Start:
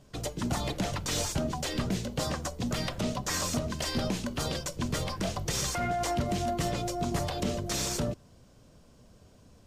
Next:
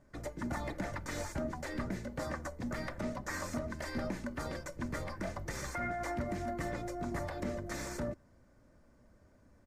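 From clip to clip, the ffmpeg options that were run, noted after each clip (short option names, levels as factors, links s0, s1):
-af "highshelf=f=2400:t=q:w=3:g=-7,aecho=1:1:3.4:0.36,volume=0.447"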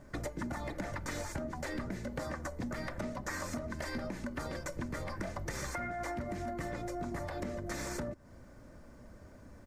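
-af "acompressor=threshold=0.00562:ratio=12,volume=3.16"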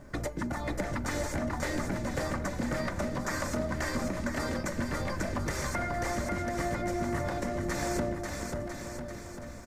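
-af "aecho=1:1:540|999|1389|1721|2003:0.631|0.398|0.251|0.158|0.1,volume=1.68"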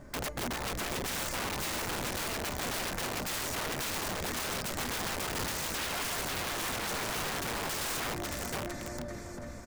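-af "aeval=exprs='(mod(29.9*val(0)+1,2)-1)/29.9':c=same"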